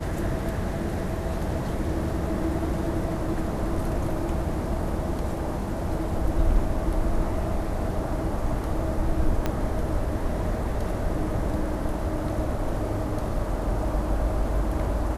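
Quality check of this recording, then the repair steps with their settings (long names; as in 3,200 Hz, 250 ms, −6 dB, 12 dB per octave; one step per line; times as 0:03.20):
0:09.46: click −12 dBFS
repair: click removal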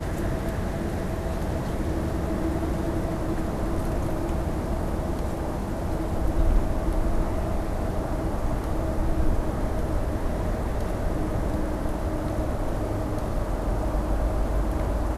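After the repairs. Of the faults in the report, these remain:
0:09.46: click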